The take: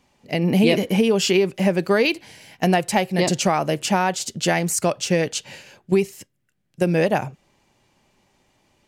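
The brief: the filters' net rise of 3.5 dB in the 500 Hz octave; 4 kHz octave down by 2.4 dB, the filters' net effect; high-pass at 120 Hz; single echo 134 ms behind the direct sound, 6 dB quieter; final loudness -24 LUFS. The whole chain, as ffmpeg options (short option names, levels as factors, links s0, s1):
-af "highpass=120,equalizer=f=500:t=o:g=4.5,equalizer=f=4000:t=o:g=-3.5,aecho=1:1:134:0.501,volume=0.531"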